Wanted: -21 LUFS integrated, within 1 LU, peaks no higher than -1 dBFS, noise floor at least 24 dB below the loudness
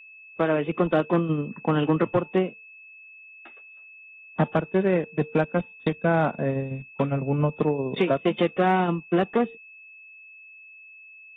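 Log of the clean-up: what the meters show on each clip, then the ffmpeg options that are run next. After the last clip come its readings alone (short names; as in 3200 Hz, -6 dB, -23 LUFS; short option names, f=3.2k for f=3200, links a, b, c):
steady tone 2600 Hz; tone level -45 dBFS; loudness -25.0 LUFS; peak -13.0 dBFS; loudness target -21.0 LUFS
-> -af "bandreject=f=2.6k:w=30"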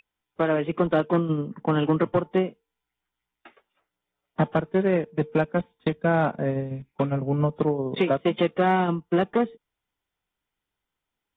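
steady tone none; loudness -25.0 LUFS; peak -13.0 dBFS; loudness target -21.0 LUFS
-> -af "volume=4dB"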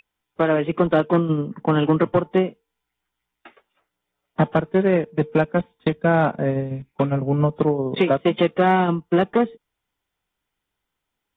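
loudness -21.0 LUFS; peak -9.0 dBFS; noise floor -81 dBFS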